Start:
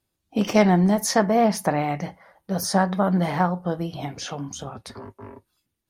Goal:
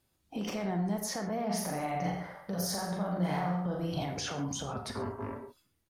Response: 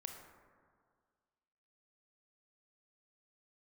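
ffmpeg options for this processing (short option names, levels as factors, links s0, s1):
-filter_complex "[0:a]acompressor=threshold=0.0355:ratio=6,alimiter=level_in=1.88:limit=0.0631:level=0:latency=1:release=37,volume=0.531,asplit=3[s0][s1][s2];[s0]afade=t=out:st=1.49:d=0.02[s3];[s1]aecho=1:1:40|84|132.4|185.6|244.2:0.631|0.398|0.251|0.158|0.1,afade=t=in:st=1.49:d=0.02,afade=t=out:st=4.04:d=0.02[s4];[s2]afade=t=in:st=4.04:d=0.02[s5];[s3][s4][s5]amix=inputs=3:normalize=0[s6];[1:a]atrim=start_sample=2205,afade=t=out:st=0.19:d=0.01,atrim=end_sample=8820[s7];[s6][s7]afir=irnorm=-1:irlink=0,volume=2.24"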